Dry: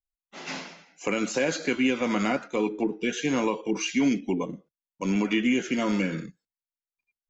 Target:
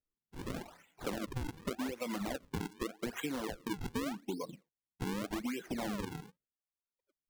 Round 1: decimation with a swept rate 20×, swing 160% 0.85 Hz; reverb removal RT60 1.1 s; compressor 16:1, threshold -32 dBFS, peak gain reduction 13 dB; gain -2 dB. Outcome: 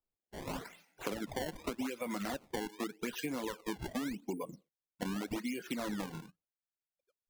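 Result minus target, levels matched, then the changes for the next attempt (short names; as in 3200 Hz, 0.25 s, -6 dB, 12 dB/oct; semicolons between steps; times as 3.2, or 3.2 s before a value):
decimation with a swept rate: distortion -6 dB
change: decimation with a swept rate 41×, swing 160% 0.85 Hz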